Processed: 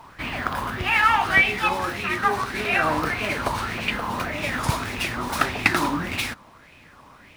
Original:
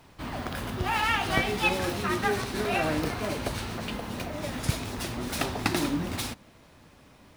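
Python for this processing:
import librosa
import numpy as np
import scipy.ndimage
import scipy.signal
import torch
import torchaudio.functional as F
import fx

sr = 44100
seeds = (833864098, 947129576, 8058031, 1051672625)

y = fx.rider(x, sr, range_db=4, speed_s=2.0)
y = fx.bell_lfo(y, sr, hz=1.7, low_hz=960.0, high_hz=2600.0, db=16)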